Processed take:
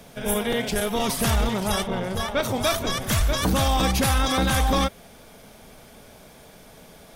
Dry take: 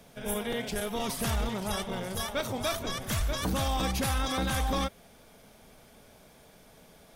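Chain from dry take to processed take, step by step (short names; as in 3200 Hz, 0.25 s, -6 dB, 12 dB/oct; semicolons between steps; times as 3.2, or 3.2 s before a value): 1.86–2.42 high shelf 4100 Hz -> 6200 Hz -12 dB; gain +8 dB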